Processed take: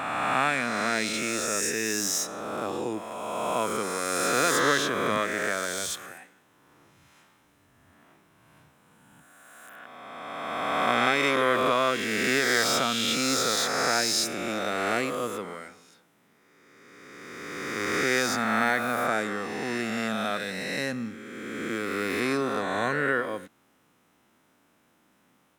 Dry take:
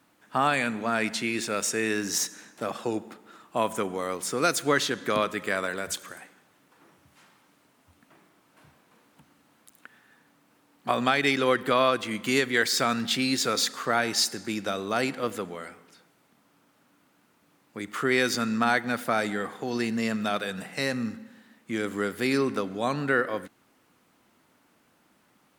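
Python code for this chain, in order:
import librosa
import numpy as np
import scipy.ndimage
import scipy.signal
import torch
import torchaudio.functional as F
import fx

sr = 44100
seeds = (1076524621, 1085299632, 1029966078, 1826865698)

y = fx.spec_swells(x, sr, rise_s=2.49)
y = fx.notch(y, sr, hz=4500.0, q=9.0)
y = y * 10.0 ** (-4.5 / 20.0)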